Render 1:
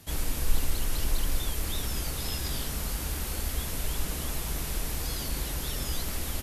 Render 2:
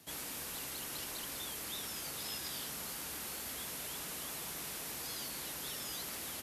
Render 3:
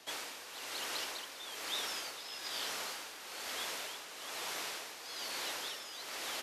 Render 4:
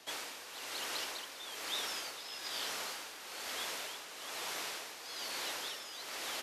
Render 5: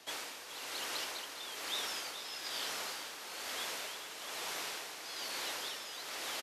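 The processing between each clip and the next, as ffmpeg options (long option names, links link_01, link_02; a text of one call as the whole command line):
ffmpeg -i in.wav -filter_complex "[0:a]highpass=180,acrossover=split=750|6300[link_01][link_02][link_03];[link_01]alimiter=level_in=17dB:limit=-24dB:level=0:latency=1,volume=-17dB[link_04];[link_04][link_02][link_03]amix=inputs=3:normalize=0,volume=-5.5dB" out.wav
ffmpeg -i in.wav -filter_complex "[0:a]acrossover=split=370 6800:gain=0.0891 1 0.178[link_01][link_02][link_03];[link_01][link_02][link_03]amix=inputs=3:normalize=0,tremolo=f=1.1:d=0.65,volume=7.5dB" out.wav
ffmpeg -i in.wav -af anull out.wav
ffmpeg -i in.wav -af "aecho=1:1:422:0.282" out.wav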